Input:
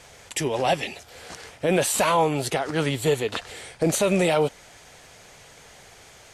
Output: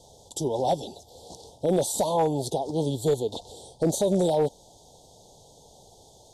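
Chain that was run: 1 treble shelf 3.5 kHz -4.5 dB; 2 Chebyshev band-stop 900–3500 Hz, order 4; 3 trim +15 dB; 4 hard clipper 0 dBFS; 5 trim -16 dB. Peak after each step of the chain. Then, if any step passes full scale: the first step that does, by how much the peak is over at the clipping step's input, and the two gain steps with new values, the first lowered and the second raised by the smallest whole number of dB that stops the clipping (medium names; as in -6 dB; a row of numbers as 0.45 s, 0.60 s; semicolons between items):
-10.0 dBFS, -11.5 dBFS, +3.5 dBFS, 0.0 dBFS, -16.0 dBFS; step 3, 3.5 dB; step 3 +11 dB, step 5 -12 dB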